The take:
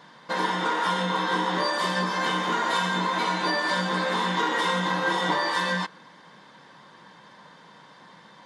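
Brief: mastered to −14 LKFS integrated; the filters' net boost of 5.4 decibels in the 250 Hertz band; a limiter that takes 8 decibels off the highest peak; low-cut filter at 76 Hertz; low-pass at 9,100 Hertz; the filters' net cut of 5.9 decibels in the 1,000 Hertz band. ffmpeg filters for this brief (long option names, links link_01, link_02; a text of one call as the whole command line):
ffmpeg -i in.wav -af "highpass=76,lowpass=9100,equalizer=frequency=250:width_type=o:gain=9,equalizer=frequency=1000:width_type=o:gain=-7,volume=14dB,alimiter=limit=-5dB:level=0:latency=1" out.wav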